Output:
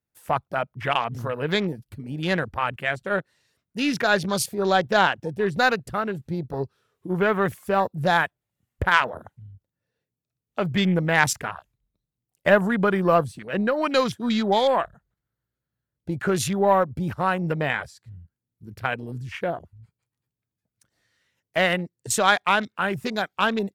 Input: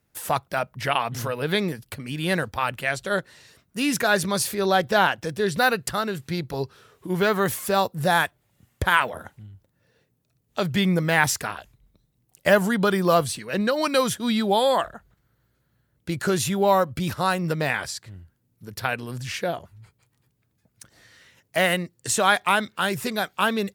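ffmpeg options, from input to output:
ffmpeg -i in.wav -af "afwtdn=0.0224,aeval=exprs='0.668*(cos(1*acos(clip(val(0)/0.668,-1,1)))-cos(1*PI/2))+0.0473*(cos(3*acos(clip(val(0)/0.668,-1,1)))-cos(3*PI/2))+0.0119*(cos(4*acos(clip(val(0)/0.668,-1,1)))-cos(4*PI/2))':channel_layout=same,volume=2dB" out.wav

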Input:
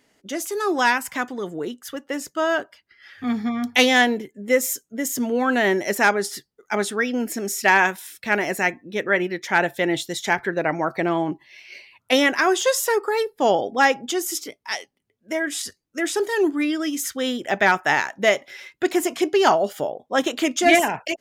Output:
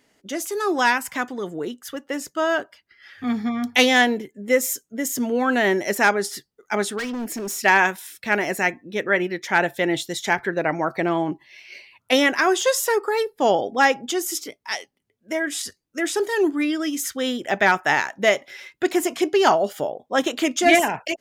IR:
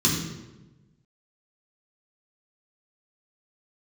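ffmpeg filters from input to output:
-filter_complex "[0:a]asplit=3[link_01][link_02][link_03];[link_01]afade=type=out:start_time=6.97:duration=0.02[link_04];[link_02]asoftclip=type=hard:threshold=-25.5dB,afade=type=in:start_time=6.97:duration=0.02,afade=type=out:start_time=7.58:duration=0.02[link_05];[link_03]afade=type=in:start_time=7.58:duration=0.02[link_06];[link_04][link_05][link_06]amix=inputs=3:normalize=0"

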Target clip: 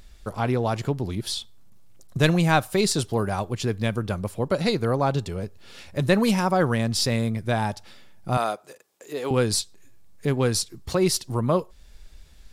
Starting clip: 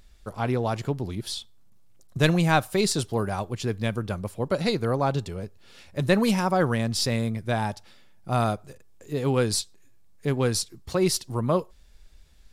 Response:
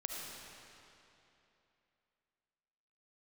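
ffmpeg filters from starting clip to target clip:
-filter_complex "[0:a]asplit=2[link_01][link_02];[link_02]acompressor=threshold=-35dB:ratio=6,volume=-0.5dB[link_03];[link_01][link_03]amix=inputs=2:normalize=0,asettb=1/sr,asplit=3[link_04][link_05][link_06];[link_04]atrim=end=8.374[link_07];[link_05]atrim=start=8.37:end=9.31,asetpts=PTS-STARTPTS,afade=type=in:duration=0.004:curve=qsin,afade=type=out:start_time=0.936:duration=0.004:curve=qsin,highpass=420[link_08];[link_06]atrim=start=9.306[link_09];[link_07][link_08]acrossfade=duration=0.004:curve1=hsin:curve2=qsin[link_10];[link_10][link_09]acrossfade=duration=0.004:curve1=qsin:curve2=hsin"

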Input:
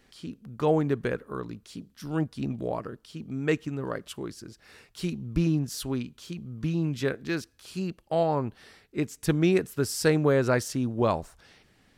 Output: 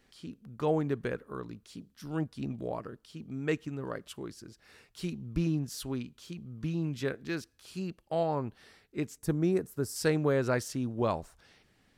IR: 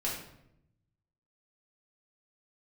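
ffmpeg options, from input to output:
-filter_complex "[0:a]asettb=1/sr,asplit=3[link_01][link_02][link_03];[link_01]atrim=end=9.184[link_04];[link_02]atrim=start=9.18:end=9.96,asetpts=PTS-STARTPTS,afade=type=in:duration=0.004:curve=qsin,afade=type=out:start_time=0.776:duration=0.004:curve=qsin,equalizer=frequency=2900:width=0.83:gain=-12[link_05];[link_03]atrim=start=9.956[link_06];[link_04][link_05]acrossfade=duration=0.004:curve1=hsin:curve2=qsin[link_07];[link_07][link_06]acrossfade=duration=0.004:curve1=qsin:curve2=hsin,volume=-5dB"

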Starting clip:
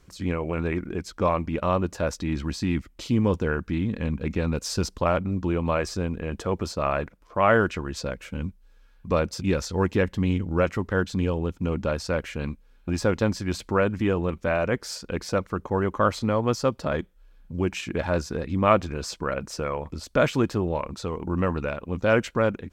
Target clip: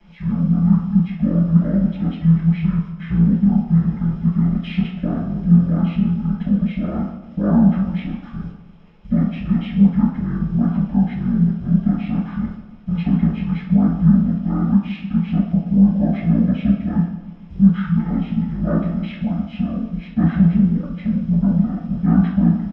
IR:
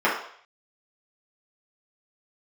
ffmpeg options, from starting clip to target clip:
-filter_complex "[0:a]firequalizer=gain_entry='entry(120,0);entry(220,-18);entry(330,7);entry(660,-30);entry(1000,-22);entry(1900,-24);entry(3400,-14);entry(4900,-26)':delay=0.05:min_phase=1,asplit=2[link_01][link_02];[link_02]alimiter=limit=-23dB:level=0:latency=1:release=66,volume=0.5dB[link_03];[link_01][link_03]amix=inputs=2:normalize=0,acrusher=bits=10:mix=0:aa=0.000001,acrossover=split=200[link_04][link_05];[link_04]volume=28dB,asoftclip=hard,volume=-28dB[link_06];[link_05]aexciter=amount=7.8:drive=3.2:freq=4900[link_07];[link_06][link_07]amix=inputs=2:normalize=0,flanger=delay=1.5:depth=8.2:regen=36:speed=1.1:shape=triangular,adynamicsmooth=sensitivity=4:basefreq=5700,asetrate=22696,aresample=44100,atempo=1.94306,asplit=2[link_08][link_09];[link_09]adelay=147,lowpass=frequency=2000:poles=1,volume=-13dB,asplit=2[link_10][link_11];[link_11]adelay=147,lowpass=frequency=2000:poles=1,volume=0.53,asplit=2[link_12][link_13];[link_13]adelay=147,lowpass=frequency=2000:poles=1,volume=0.53,asplit=2[link_14][link_15];[link_15]adelay=147,lowpass=frequency=2000:poles=1,volume=0.53,asplit=2[link_16][link_17];[link_17]adelay=147,lowpass=frequency=2000:poles=1,volume=0.53[link_18];[link_08][link_10][link_12][link_14][link_16][link_18]amix=inputs=6:normalize=0[link_19];[1:a]atrim=start_sample=2205[link_20];[link_19][link_20]afir=irnorm=-1:irlink=0,volume=-1dB"

